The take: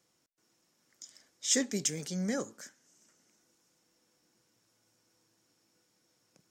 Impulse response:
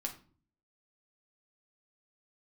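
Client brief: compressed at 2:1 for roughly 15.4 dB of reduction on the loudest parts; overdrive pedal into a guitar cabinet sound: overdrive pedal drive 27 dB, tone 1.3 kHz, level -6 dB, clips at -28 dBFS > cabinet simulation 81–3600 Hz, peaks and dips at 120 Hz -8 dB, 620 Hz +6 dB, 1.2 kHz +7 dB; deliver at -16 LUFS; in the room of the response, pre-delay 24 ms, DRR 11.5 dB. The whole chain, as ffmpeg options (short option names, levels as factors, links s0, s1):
-filter_complex "[0:a]acompressor=threshold=0.00224:ratio=2,asplit=2[s0][s1];[1:a]atrim=start_sample=2205,adelay=24[s2];[s1][s2]afir=irnorm=-1:irlink=0,volume=0.266[s3];[s0][s3]amix=inputs=2:normalize=0,asplit=2[s4][s5];[s5]highpass=f=720:p=1,volume=22.4,asoftclip=type=tanh:threshold=0.0398[s6];[s4][s6]amix=inputs=2:normalize=0,lowpass=f=1300:p=1,volume=0.501,highpass=81,equalizer=f=120:t=q:w=4:g=-8,equalizer=f=620:t=q:w=4:g=6,equalizer=f=1200:t=q:w=4:g=7,lowpass=f=3600:w=0.5412,lowpass=f=3600:w=1.3066,volume=22.4"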